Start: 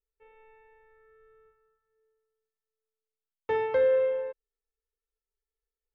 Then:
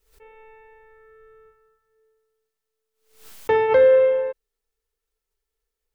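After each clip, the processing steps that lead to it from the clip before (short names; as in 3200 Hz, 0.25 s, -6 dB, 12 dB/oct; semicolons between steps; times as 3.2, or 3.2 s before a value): backwards sustainer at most 110 dB/s; gain +9 dB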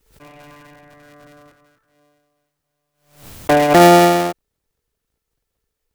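cycle switcher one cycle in 3, inverted; gain +5.5 dB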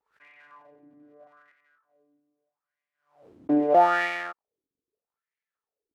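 overloaded stage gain 7 dB; wah 0.79 Hz 270–2100 Hz, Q 4.6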